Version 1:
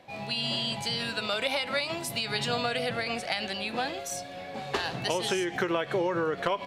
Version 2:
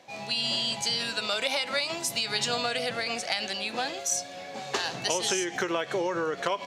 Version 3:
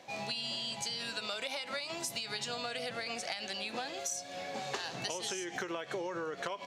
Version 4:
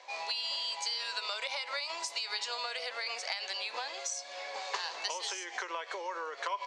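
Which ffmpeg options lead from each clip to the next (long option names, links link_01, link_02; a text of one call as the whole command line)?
ffmpeg -i in.wav -af "highpass=frequency=230:poles=1,equalizer=frequency=6400:width_type=o:width=0.79:gain=11" out.wav
ffmpeg -i in.wav -af "acompressor=threshold=-35dB:ratio=6" out.wav
ffmpeg -i in.wav -af "highpass=frequency=490:width=0.5412,highpass=frequency=490:width=1.3066,equalizer=frequency=700:width_type=q:width=4:gain=-4,equalizer=frequency=1000:width_type=q:width=4:gain=9,equalizer=frequency=2100:width_type=q:width=4:gain=4,equalizer=frequency=4600:width_type=q:width=4:gain=5,lowpass=frequency=8000:width=0.5412,lowpass=frequency=8000:width=1.3066" out.wav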